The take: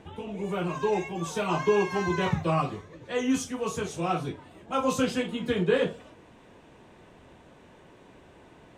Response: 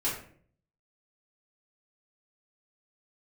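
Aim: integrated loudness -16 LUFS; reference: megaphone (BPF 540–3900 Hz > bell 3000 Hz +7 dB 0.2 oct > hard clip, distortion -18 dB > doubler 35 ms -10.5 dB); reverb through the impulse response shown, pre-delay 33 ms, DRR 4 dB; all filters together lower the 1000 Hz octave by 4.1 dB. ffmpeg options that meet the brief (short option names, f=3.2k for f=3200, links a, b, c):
-filter_complex "[0:a]equalizer=f=1k:t=o:g=-4.5,asplit=2[a][b];[1:a]atrim=start_sample=2205,adelay=33[c];[b][c]afir=irnorm=-1:irlink=0,volume=-11dB[d];[a][d]amix=inputs=2:normalize=0,highpass=540,lowpass=3.9k,equalizer=f=3k:t=o:w=0.2:g=7,asoftclip=type=hard:threshold=-23.5dB,asplit=2[e][f];[f]adelay=35,volume=-10.5dB[g];[e][g]amix=inputs=2:normalize=0,volume=16dB"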